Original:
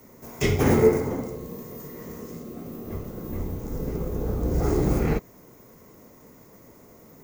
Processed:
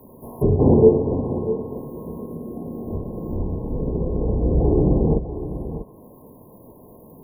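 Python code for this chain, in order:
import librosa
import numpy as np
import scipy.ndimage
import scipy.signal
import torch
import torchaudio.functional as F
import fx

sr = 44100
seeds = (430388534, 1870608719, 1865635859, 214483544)

p1 = fx.brickwall_bandstop(x, sr, low_hz=1100.0, high_hz=9600.0)
p2 = fx.dynamic_eq(p1, sr, hz=890.0, q=3.2, threshold_db=-48.0, ratio=4.0, max_db=-4)
p3 = p2 + fx.echo_single(p2, sr, ms=644, db=-12.0, dry=0)
p4 = fx.env_lowpass_down(p3, sr, base_hz=890.0, full_db=-20.0)
y = F.gain(torch.from_numpy(p4), 5.5).numpy()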